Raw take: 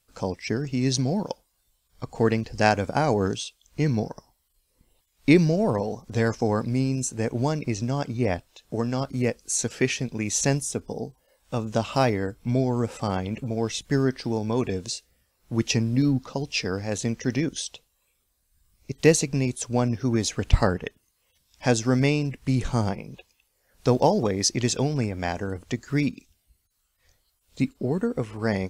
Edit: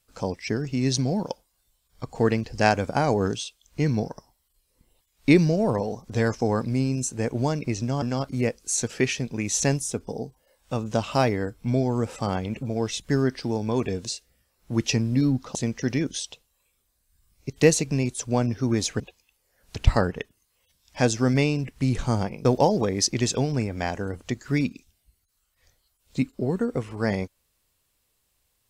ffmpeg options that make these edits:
-filter_complex "[0:a]asplit=6[a][b][c][d][e][f];[a]atrim=end=8.022[g];[b]atrim=start=8.828:end=16.362[h];[c]atrim=start=16.968:end=20.422[i];[d]atrim=start=23.108:end=23.872[j];[e]atrim=start=20.418:end=23.112[k];[f]atrim=start=23.868[l];[g][h]acrossfade=d=0.004:c1=hsin:c2=hsin[m];[m][i]acrossfade=d=0.004:c1=hsin:c2=hsin[n];[n][j]acrossfade=d=0.004:c1=hsin:c2=hsin[o];[o][k]acrossfade=d=0.004:c1=hsin:c2=hsin[p];[p][l]acrossfade=d=0.004:c1=hsin:c2=hsin"

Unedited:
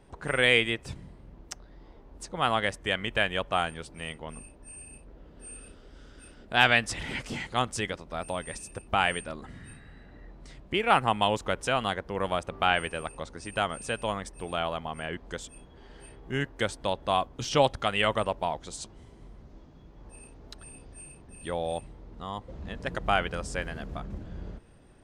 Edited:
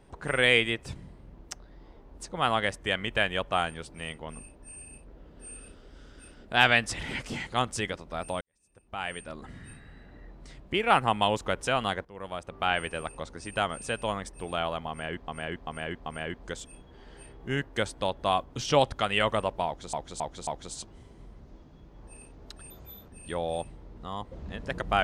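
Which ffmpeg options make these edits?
-filter_complex "[0:a]asplit=11[a][b][c][d][e][f][g][h][i][j][k];[a]atrim=end=8.41,asetpts=PTS-STARTPTS,afade=t=out:st=8.406:d=0.004:c=hsin[l];[b]atrim=start=8.41:end=12.05,asetpts=PTS-STARTPTS,afade=t=in:d=1.06:c=qua,afade=t=out:st=3.636:d=0.004:c=hsin:silence=0.149624[m];[c]atrim=start=12.05:end=15.282,asetpts=PTS-STARTPTS,afade=t=in:d=0.92:silence=0.149624[n];[d]atrim=start=14.888:end=15.282[o];[e]atrim=start=14.888:end=15.282[p];[f]atrim=start=14.888:end=18.762[q];[g]atrim=start=18.488:end=18.762[r];[h]atrim=start=18.488:end=18.762[s];[i]atrim=start=18.488:end=20.724[t];[j]atrim=start=20.72:end=21.25,asetpts=PTS-STARTPTS,asetrate=60858,aresample=44100[u];[k]atrim=start=21.246[v];[l][m][n]concat=n=3:v=0:a=1[w];[w][o]acrossfade=d=0.004:c1=hsin:c2=hsin[x];[x][p]acrossfade=d=0.004:c1=hsin:c2=hsin[y];[y][q]acrossfade=d=0.004:c1=hsin:c2=hsin[z];[z][r]acrossfade=d=0.004:c1=hsin:c2=hsin[aa];[aa][s]acrossfade=d=0.004:c1=hsin:c2=hsin[ab];[ab][t]acrossfade=d=0.004:c1=hsin:c2=hsin[ac];[ac][u]acrossfade=d=0.004:c1=hsin:c2=hsin[ad];[ad][v]acrossfade=d=0.004:c1=hsin:c2=hsin"

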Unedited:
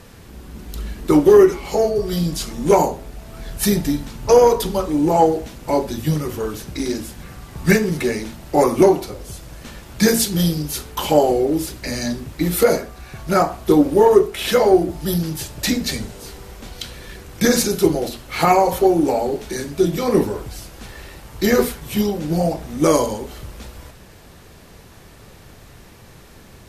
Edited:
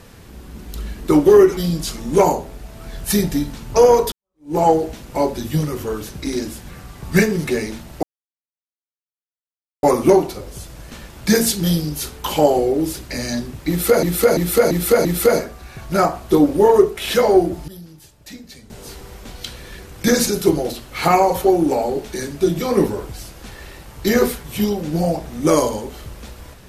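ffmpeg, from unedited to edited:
-filter_complex "[0:a]asplit=10[a][b][c][d][e][f][g][h][i][j];[a]atrim=end=1.572[k];[b]atrim=start=2.098:end=4.65,asetpts=PTS-STARTPTS,afade=t=out:st=2.548:d=0.004:c=hsin[l];[c]atrim=start=4.65:end=8.56,asetpts=PTS-STARTPTS,afade=t=in:d=0.44:c=exp,afade=t=out:st=3.906:d=0.004:c=hsin,apad=pad_dur=1.8[m];[d]atrim=start=8.56:end=12.762,asetpts=PTS-STARTPTS,afade=t=in:d=0.004:c=hsin[n];[e]atrim=start=12.418:end=12.762[o];[f]atrim=start=12.418:end=12.762[p];[g]atrim=start=12.418:end=12.762[q];[h]atrim=start=12.418:end=15.05,asetpts=PTS-STARTPTS,afade=t=out:st=2.442:d=0.19:c=log:silence=0.133352[r];[i]atrim=start=15.05:end=16.07,asetpts=PTS-STARTPTS,volume=-17.5dB[s];[j]atrim=start=16.07,asetpts=PTS-STARTPTS,afade=t=in:d=0.19:c=log:silence=0.133352[t];[l][m][n]concat=n=3:v=0:a=1[u];[k][u]acrossfade=d=0.004:c1=hsin:c2=hsin[v];[v][o]acrossfade=d=0.004:c1=hsin:c2=hsin[w];[w][p]acrossfade=d=0.004:c1=hsin:c2=hsin[x];[x][q]acrossfade=d=0.004:c1=hsin:c2=hsin[y];[r][s][t]concat=n=3:v=0:a=1[z];[y][z]acrossfade=d=0.004:c1=hsin:c2=hsin"

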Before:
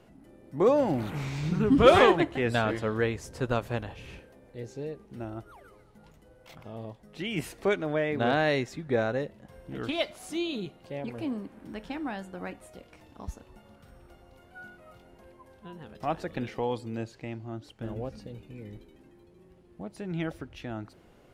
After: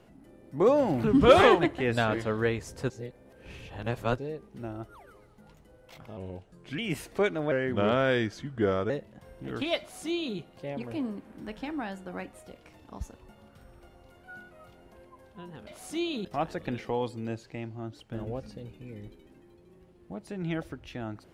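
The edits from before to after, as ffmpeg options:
-filter_complex "[0:a]asplit=10[a][b][c][d][e][f][g][h][i][j];[a]atrim=end=1.042[k];[b]atrim=start=1.608:end=3.472[l];[c]atrim=start=3.468:end=4.752,asetpts=PTS-STARTPTS,areverse[m];[d]atrim=start=4.748:end=6.744[n];[e]atrim=start=6.74:end=7.25,asetpts=PTS-STARTPTS,asetrate=36603,aresample=44100[o];[f]atrim=start=7.246:end=7.984[p];[g]atrim=start=7.98:end=9.17,asetpts=PTS-STARTPTS,asetrate=37926,aresample=44100,atrim=end_sample=61022,asetpts=PTS-STARTPTS[q];[h]atrim=start=9.166:end=15.942[r];[i]atrim=start=10.058:end=10.642[s];[j]atrim=start=15.938[t];[k][l]acrossfade=d=0.004:c1=hsin:c2=hsin[u];[u][m]acrossfade=d=0.004:c1=hsin:c2=hsin[v];[v][n]acrossfade=d=0.004:c1=hsin:c2=hsin[w];[w][o]acrossfade=d=0.004:c1=hsin:c2=hsin[x];[x][p]acrossfade=d=0.004:c1=hsin:c2=hsin[y];[y][q]acrossfade=d=0.004:c1=hsin:c2=hsin[z];[z][r]acrossfade=d=0.004:c1=hsin:c2=hsin[aa];[aa][s]acrossfade=d=0.004:c1=hsin:c2=hsin[ab];[ab][t]acrossfade=d=0.004:c1=hsin:c2=hsin"

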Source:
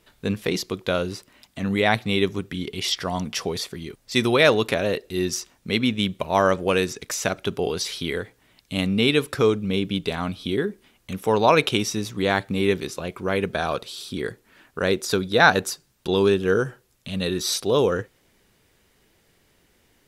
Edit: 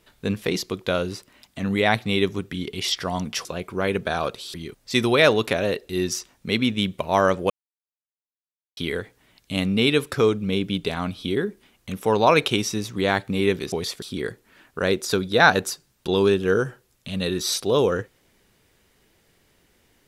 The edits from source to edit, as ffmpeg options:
-filter_complex "[0:a]asplit=7[a][b][c][d][e][f][g];[a]atrim=end=3.452[h];[b]atrim=start=12.928:end=14.022[i];[c]atrim=start=3.748:end=6.71,asetpts=PTS-STARTPTS,afade=t=out:st=2.958:d=0.004:c=hsin[j];[d]atrim=start=6.71:end=7.98,asetpts=PTS-STARTPTS,volume=0[k];[e]atrim=start=7.98:end=12.932,asetpts=PTS-STARTPTS,afade=t=in:d=0.004:c=hsin[l];[f]atrim=start=3.448:end=3.752[m];[g]atrim=start=14.018[n];[h][i]acrossfade=d=0.004:c1=hsin:c2=hsin[o];[j][k][l]concat=n=3:v=0:a=1[p];[o][p]acrossfade=d=0.004:c1=hsin:c2=hsin[q];[q][m]acrossfade=d=0.004:c1=hsin:c2=hsin[r];[r][n]acrossfade=d=0.004:c1=hsin:c2=hsin"

